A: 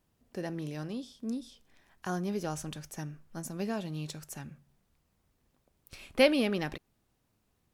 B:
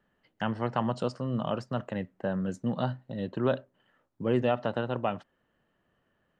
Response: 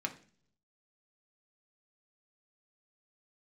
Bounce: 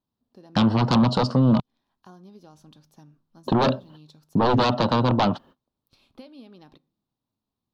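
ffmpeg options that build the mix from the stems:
-filter_complex "[0:a]acompressor=threshold=-33dB:ratio=6,volume=-16dB,asplit=2[a][b];[b]volume=-14dB[c];[1:a]agate=range=-39dB:threshold=-59dB:ratio=16:detection=peak,aeval=exprs='0.2*sin(PI/2*3.98*val(0)/0.2)':c=same,adelay=150,volume=-3dB,asplit=3[d][e][f];[d]atrim=end=1.6,asetpts=PTS-STARTPTS,afade=t=out:st=1.596:d=0.004:c=hsin[g];[e]atrim=start=1.6:end=3.47,asetpts=PTS-STARTPTS,volume=0[h];[f]atrim=start=3.47,asetpts=PTS-STARTPTS,afade=t=in:d=0.004:c=hsin[i];[g][h][i]concat=n=3:v=0:a=1[j];[2:a]atrim=start_sample=2205[k];[c][k]afir=irnorm=-1:irlink=0[l];[a][j][l]amix=inputs=3:normalize=0,equalizer=f=125:t=o:w=1:g=5,equalizer=f=250:t=o:w=1:g=7,equalizer=f=1k:t=o:w=1:g=9,equalizer=f=2k:t=o:w=1:g=-11,equalizer=f=4k:t=o:w=1:g=12,equalizer=f=8k:t=o:w=1:g=-9,acompressor=threshold=-20dB:ratio=1.5"

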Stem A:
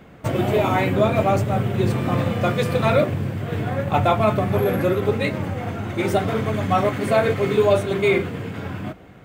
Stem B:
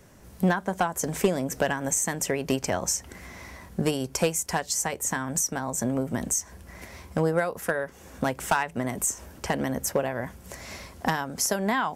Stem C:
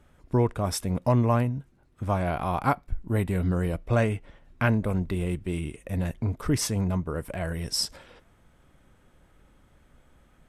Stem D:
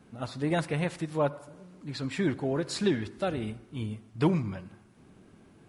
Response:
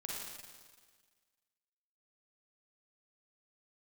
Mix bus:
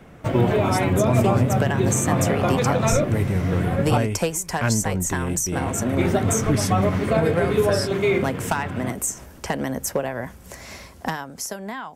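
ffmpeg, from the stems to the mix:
-filter_complex "[0:a]highshelf=f=6.8k:g=-9,volume=-0.5dB,asplit=3[a][b][c];[a]atrim=end=3.98,asetpts=PTS-STARTPTS,afade=t=out:st=3.976:d=0.004:c=hsin[d];[b]atrim=start=3.98:end=5.54,asetpts=PTS-STARTPTS,volume=0[e];[c]atrim=start=5.54,asetpts=PTS-STARTPTS,afade=t=in:d=0.004:c=hsin[f];[d][e][f]concat=n=3:v=0:a=1[g];[1:a]dynaudnorm=f=150:g=13:m=11.5dB,volume=-7.5dB[h];[2:a]volume=1.5dB[i];[3:a]adelay=100,volume=-18dB[j];[g][h][i][j]amix=inputs=4:normalize=0,acrossover=split=350[k][l];[l]acompressor=threshold=-19dB:ratio=6[m];[k][m]amix=inputs=2:normalize=0"

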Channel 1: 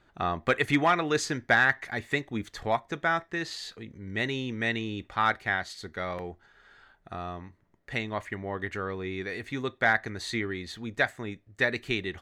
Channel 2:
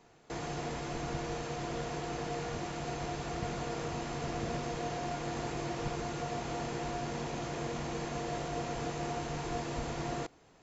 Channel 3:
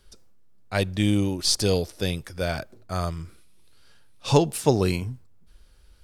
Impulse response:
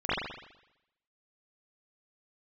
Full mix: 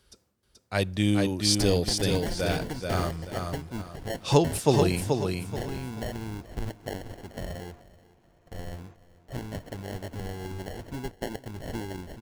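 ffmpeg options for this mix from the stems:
-filter_complex "[0:a]highshelf=f=8k:g=6,acrusher=samples=36:mix=1:aa=0.000001,lowshelf=f=160:g=9.5,adelay=1400,volume=-5dB,asplit=2[a][b];[b]volume=-20.5dB[c];[1:a]acrossover=split=2500[d][e];[e]acompressor=threshold=-56dB:ratio=4:attack=1:release=60[f];[d][f]amix=inputs=2:normalize=0,adelay=850,volume=-17.5dB[g];[2:a]highpass=61,volume=-2dB,asplit=2[h][i];[i]volume=-4.5dB[j];[a][g]amix=inputs=2:normalize=0,agate=range=-11dB:threshold=-48dB:ratio=16:detection=peak,acompressor=threshold=-29dB:ratio=6,volume=0dB[k];[c][j]amix=inputs=2:normalize=0,aecho=0:1:431|862|1293|1724:1|0.3|0.09|0.027[l];[h][k][l]amix=inputs=3:normalize=0"

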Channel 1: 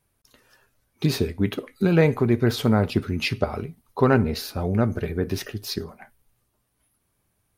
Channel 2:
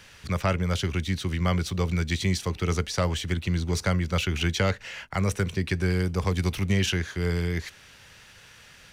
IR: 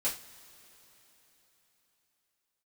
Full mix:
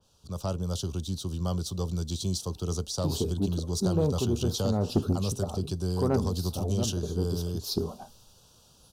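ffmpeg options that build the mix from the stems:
-filter_complex "[0:a]adelay=2000,volume=-2.5dB[a];[1:a]adynamicequalizer=threshold=0.00708:dfrequency=3100:dqfactor=0.7:tfrequency=3100:tqfactor=0.7:attack=5:release=100:ratio=0.375:range=2.5:mode=boostabove:tftype=highshelf,volume=-11.5dB,asplit=2[b][c];[c]apad=whole_len=422076[d];[a][d]sidechaincompress=threshold=-47dB:ratio=4:attack=8.3:release=282[e];[e][b]amix=inputs=2:normalize=0,dynaudnorm=f=240:g=3:m=7dB,asuperstop=centerf=2000:order=4:qfactor=0.73,asoftclip=type=tanh:threshold=-15dB"

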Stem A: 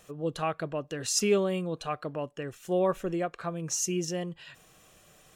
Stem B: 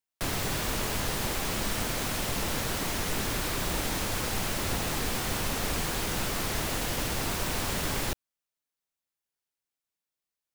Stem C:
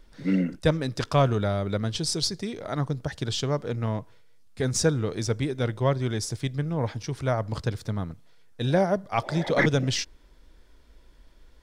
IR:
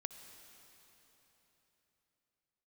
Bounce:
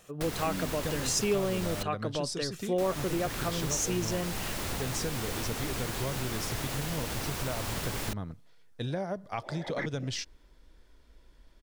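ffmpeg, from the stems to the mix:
-filter_complex "[0:a]dynaudnorm=f=120:g=3:m=5dB,volume=-0.5dB[a];[1:a]volume=-2.5dB,asplit=3[b][c][d];[b]atrim=end=1.83,asetpts=PTS-STARTPTS,afade=t=out:st=1.826:d=0.004:c=hsin[e];[c]atrim=start=1.83:end=2.78,asetpts=PTS-STARTPTS,volume=0[f];[d]atrim=start=2.78,asetpts=PTS-STARTPTS,afade=t=in:d=0.004:c=hsin[g];[e][f][g]concat=n=3:v=0:a=1[h];[2:a]acompressor=threshold=-27dB:ratio=2.5,adelay=200,volume=-3.5dB[i];[a][h][i]amix=inputs=3:normalize=0,acompressor=threshold=-31dB:ratio=2"

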